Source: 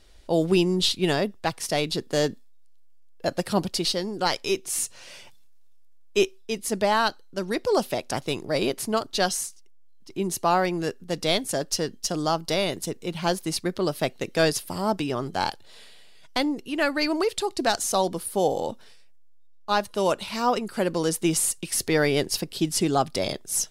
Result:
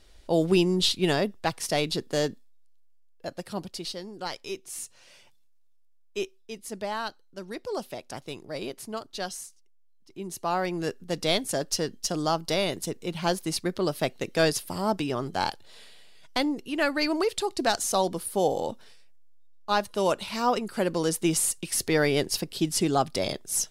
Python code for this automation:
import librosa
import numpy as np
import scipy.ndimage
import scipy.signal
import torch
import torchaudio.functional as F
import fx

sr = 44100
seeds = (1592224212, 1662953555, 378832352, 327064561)

y = fx.gain(x, sr, db=fx.line((1.89, -1.0), (3.35, -10.0), (10.2, -10.0), (10.9, -1.5)))